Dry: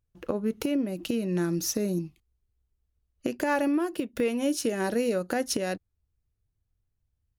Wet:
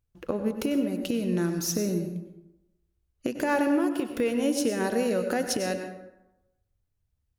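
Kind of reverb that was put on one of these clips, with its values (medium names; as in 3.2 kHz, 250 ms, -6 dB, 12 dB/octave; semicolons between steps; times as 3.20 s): plate-style reverb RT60 0.93 s, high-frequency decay 0.55×, pre-delay 85 ms, DRR 6.5 dB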